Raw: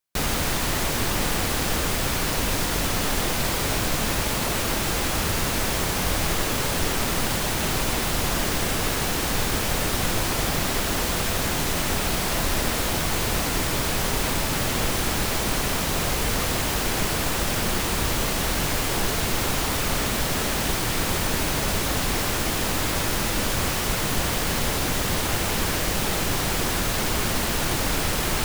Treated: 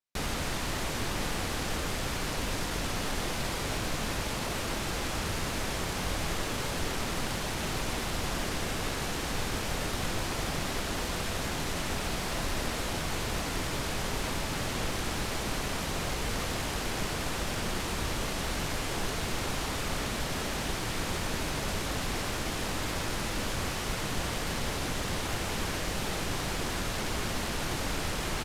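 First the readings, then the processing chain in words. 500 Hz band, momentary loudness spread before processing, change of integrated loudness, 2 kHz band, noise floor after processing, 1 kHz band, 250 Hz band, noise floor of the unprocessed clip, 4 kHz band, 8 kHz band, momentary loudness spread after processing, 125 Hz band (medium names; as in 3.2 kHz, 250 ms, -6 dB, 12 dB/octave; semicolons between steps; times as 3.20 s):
-7.5 dB, 0 LU, -9.0 dB, -7.5 dB, -34 dBFS, -7.5 dB, -7.5 dB, -26 dBFS, -8.0 dB, -10.5 dB, 0 LU, -7.5 dB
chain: median filter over 3 samples; resampled via 32 kHz; trim -7.5 dB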